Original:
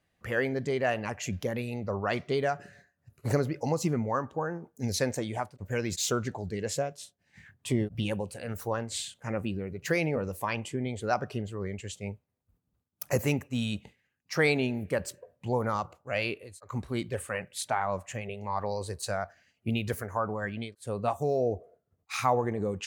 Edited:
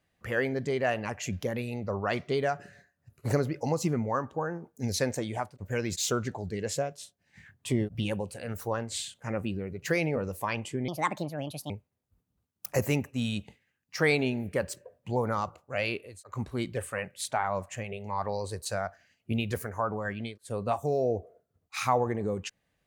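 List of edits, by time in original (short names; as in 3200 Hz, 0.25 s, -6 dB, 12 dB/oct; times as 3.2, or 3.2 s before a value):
10.88–12.07 speed 145%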